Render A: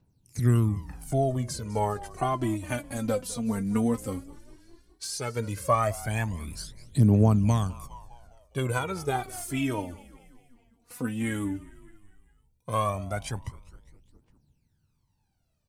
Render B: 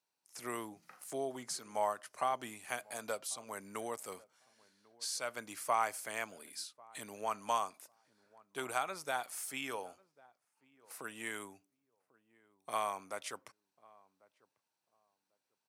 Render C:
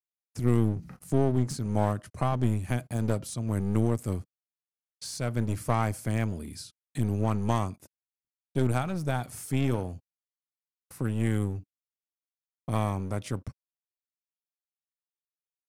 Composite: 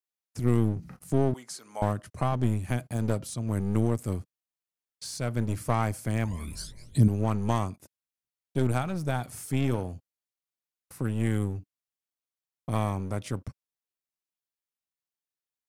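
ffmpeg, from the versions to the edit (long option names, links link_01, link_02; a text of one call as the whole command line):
ffmpeg -i take0.wav -i take1.wav -i take2.wav -filter_complex "[2:a]asplit=3[link_01][link_02][link_03];[link_01]atrim=end=1.342[link_04];[1:a]atrim=start=1.338:end=1.822[link_05];[link_02]atrim=start=1.818:end=6.252[link_06];[0:a]atrim=start=6.248:end=7.082[link_07];[link_03]atrim=start=7.078[link_08];[link_04][link_05]acrossfade=duration=0.004:curve1=hsin:curve2=hsin[link_09];[link_09][link_06]acrossfade=duration=0.004:curve1=hsin:curve2=hsin[link_10];[link_10][link_07]acrossfade=duration=0.004:curve1=hsin:curve2=hsin[link_11];[link_11][link_08]acrossfade=duration=0.004:curve1=hsin:curve2=hsin" out.wav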